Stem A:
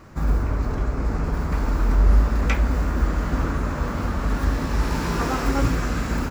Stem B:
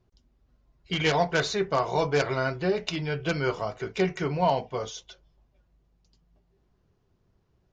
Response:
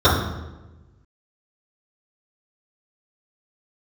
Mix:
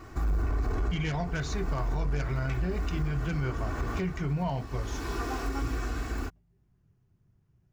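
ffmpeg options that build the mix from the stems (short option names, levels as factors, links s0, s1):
-filter_complex "[0:a]aecho=1:1:2.7:0.73,volume=0.75,afade=t=out:st=3.88:d=0.47:silence=0.398107[s0];[1:a]equalizer=f=125:t=o:w=1:g=9,equalizer=f=500:t=o:w=1:g=-8,equalizer=f=1000:t=o:w=1:g=-4,equalizer=f=4000:t=o:w=1:g=-9,volume=0.794,asplit=2[s1][s2];[s2]apad=whole_len=277954[s3];[s0][s3]sidechaincompress=threshold=0.02:ratio=6:attack=6.5:release=549[s4];[s4][s1]amix=inputs=2:normalize=0,asoftclip=type=tanh:threshold=0.158,alimiter=limit=0.075:level=0:latency=1:release=87"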